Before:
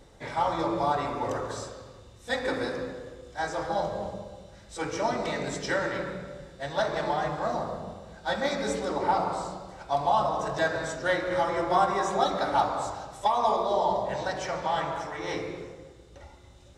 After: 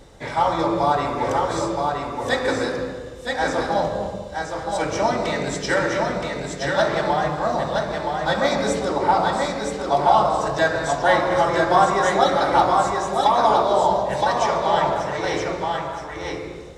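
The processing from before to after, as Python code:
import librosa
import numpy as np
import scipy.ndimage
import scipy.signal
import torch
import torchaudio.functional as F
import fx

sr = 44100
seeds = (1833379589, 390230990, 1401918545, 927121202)

y = x + 10.0 ** (-4.0 / 20.0) * np.pad(x, (int(971 * sr / 1000.0), 0))[:len(x)]
y = F.gain(torch.from_numpy(y), 7.0).numpy()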